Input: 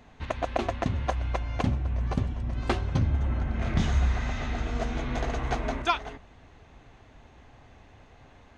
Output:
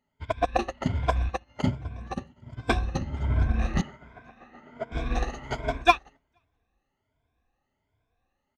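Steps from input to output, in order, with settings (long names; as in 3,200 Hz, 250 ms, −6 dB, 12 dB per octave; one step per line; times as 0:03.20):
rippled gain that drifts along the octave scale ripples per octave 1.7, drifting +1.3 Hz, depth 17 dB
0:01.29–0:02.72: high-pass filter 97 Hz 12 dB per octave
in parallel at −7 dB: gain into a clipping stage and back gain 25 dB
0:03.81–0:04.92: on the sum: three-way crossover with the lows and the highs turned down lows −23 dB, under 150 Hz, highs −16 dB, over 2,400 Hz
on a send: single-tap delay 472 ms −21 dB
on the sum: expander for the loud parts 2.5 to 1, over −39 dBFS
level +4 dB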